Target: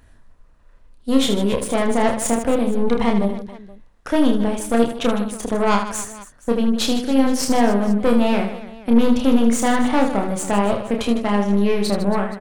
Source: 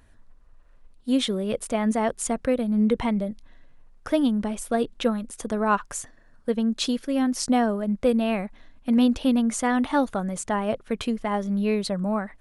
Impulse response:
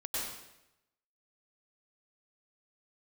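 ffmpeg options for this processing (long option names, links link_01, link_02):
-filter_complex "[0:a]aeval=exprs='(tanh(11.2*val(0)+0.75)-tanh(0.75))/11.2':channel_layout=same,asplit=2[link_01][link_02];[link_02]aecho=0:1:30|78|154.8|277.7|474.3:0.631|0.398|0.251|0.158|0.1[link_03];[link_01][link_03]amix=inputs=2:normalize=0,volume=8dB"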